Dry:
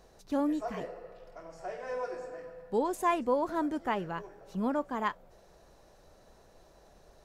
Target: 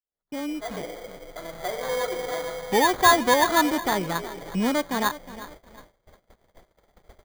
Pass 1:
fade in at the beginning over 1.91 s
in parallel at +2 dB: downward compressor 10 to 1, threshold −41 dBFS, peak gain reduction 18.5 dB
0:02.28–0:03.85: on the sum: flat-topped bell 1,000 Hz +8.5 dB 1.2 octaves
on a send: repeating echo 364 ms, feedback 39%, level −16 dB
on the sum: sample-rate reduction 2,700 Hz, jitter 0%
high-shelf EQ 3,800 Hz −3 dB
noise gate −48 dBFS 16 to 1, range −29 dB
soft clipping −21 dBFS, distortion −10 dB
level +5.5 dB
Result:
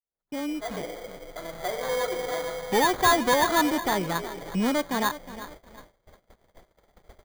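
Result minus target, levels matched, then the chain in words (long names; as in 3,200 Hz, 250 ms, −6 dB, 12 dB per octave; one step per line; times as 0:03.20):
soft clipping: distortion +7 dB
fade in at the beginning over 1.91 s
in parallel at +2 dB: downward compressor 10 to 1, threshold −41 dBFS, peak gain reduction 18.5 dB
0:02.28–0:03.85: on the sum: flat-topped bell 1,000 Hz +8.5 dB 1.2 octaves
on a send: repeating echo 364 ms, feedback 39%, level −16 dB
on the sum: sample-rate reduction 2,700 Hz, jitter 0%
high-shelf EQ 3,800 Hz −3 dB
noise gate −48 dBFS 16 to 1, range −29 dB
soft clipping −14.5 dBFS, distortion −17 dB
level +5.5 dB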